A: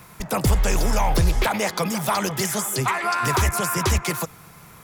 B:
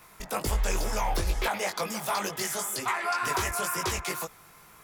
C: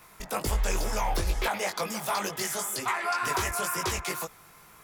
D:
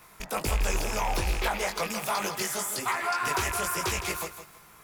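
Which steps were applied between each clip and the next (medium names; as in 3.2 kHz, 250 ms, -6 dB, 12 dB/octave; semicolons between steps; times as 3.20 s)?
peaking EQ 130 Hz -11.5 dB 1.8 oct; chorus 2.1 Hz, delay 18.5 ms, depth 2.9 ms; trim -2.5 dB
no audible change
rattle on loud lows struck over -39 dBFS, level -23 dBFS; bit-crushed delay 162 ms, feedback 35%, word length 8-bit, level -9.5 dB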